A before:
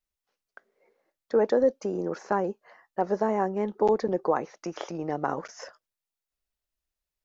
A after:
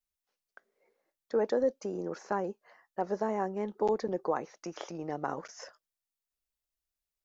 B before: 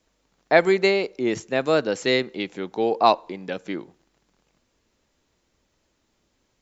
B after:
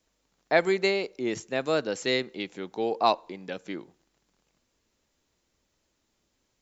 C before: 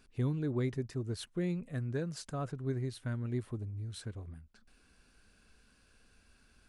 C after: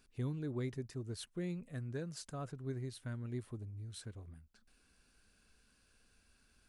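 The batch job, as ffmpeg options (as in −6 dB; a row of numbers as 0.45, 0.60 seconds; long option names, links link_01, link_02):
-af "highshelf=frequency=4300:gain=5.5,volume=-6dB"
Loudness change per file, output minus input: −6.0, −5.0, −6.0 LU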